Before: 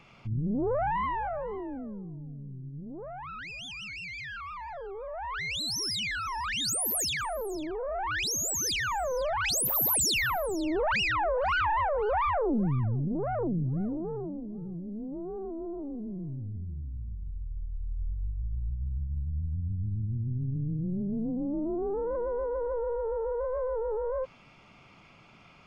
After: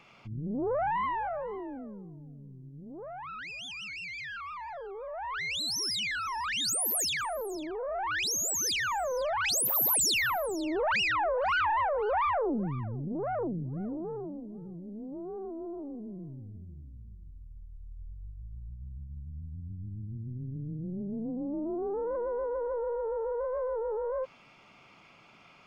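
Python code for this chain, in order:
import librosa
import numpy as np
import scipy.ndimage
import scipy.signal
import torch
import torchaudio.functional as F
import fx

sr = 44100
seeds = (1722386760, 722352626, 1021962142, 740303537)

y = fx.low_shelf(x, sr, hz=160.0, db=-12.0)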